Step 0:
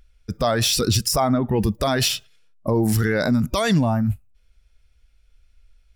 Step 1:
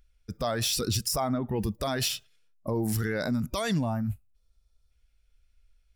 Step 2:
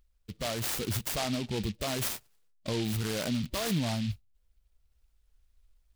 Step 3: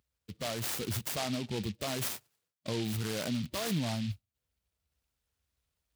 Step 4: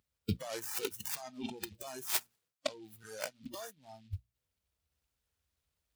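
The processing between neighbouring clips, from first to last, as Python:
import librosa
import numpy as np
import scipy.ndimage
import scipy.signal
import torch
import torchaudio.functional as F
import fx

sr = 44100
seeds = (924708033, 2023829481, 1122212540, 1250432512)

y1 = fx.spec_repair(x, sr, seeds[0], start_s=4.38, length_s=0.5, low_hz=1400.0, high_hz=3400.0, source='before')
y1 = fx.high_shelf(y1, sr, hz=7600.0, db=4.5)
y1 = y1 * 10.0 ** (-9.0 / 20.0)
y2 = fx.rider(y1, sr, range_db=10, speed_s=2.0)
y2 = fx.noise_mod_delay(y2, sr, seeds[1], noise_hz=3200.0, depth_ms=0.15)
y2 = y2 * 10.0 ** (-2.5 / 20.0)
y3 = scipy.signal.sosfilt(scipy.signal.butter(4, 77.0, 'highpass', fs=sr, output='sos'), y2)
y3 = y3 * 10.0 ** (-2.5 / 20.0)
y4 = fx.over_compress(y3, sr, threshold_db=-42.0, ratio=-0.5)
y4 = fx.hum_notches(y4, sr, base_hz=60, count=4)
y4 = fx.noise_reduce_blind(y4, sr, reduce_db=17)
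y4 = y4 * 10.0 ** (6.5 / 20.0)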